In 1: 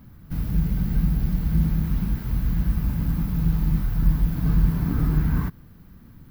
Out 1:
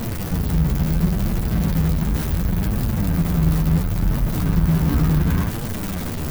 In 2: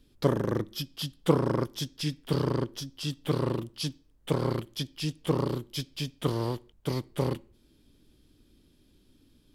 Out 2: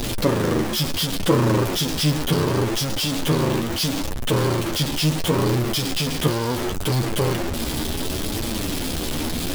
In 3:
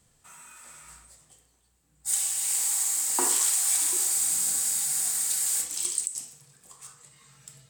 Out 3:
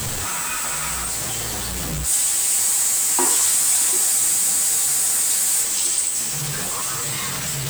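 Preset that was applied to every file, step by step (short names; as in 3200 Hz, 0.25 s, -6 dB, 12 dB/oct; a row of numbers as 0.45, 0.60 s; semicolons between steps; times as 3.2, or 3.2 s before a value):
zero-crossing step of -22 dBFS; flange 0.71 Hz, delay 8.4 ms, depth 5.4 ms, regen +19%; normalise peaks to -6 dBFS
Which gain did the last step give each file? +5.0, +6.5, +6.5 dB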